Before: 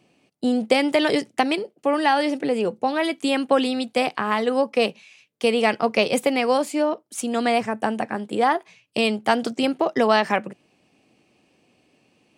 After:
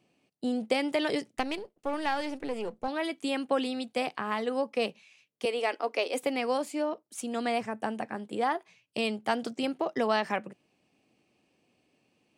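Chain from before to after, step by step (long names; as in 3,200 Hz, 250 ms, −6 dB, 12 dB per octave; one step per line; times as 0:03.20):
0:01.36–0:02.88: gain on one half-wave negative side −7 dB
0:05.45–0:06.23: elliptic high-pass filter 270 Hz, stop band 40 dB
level −9 dB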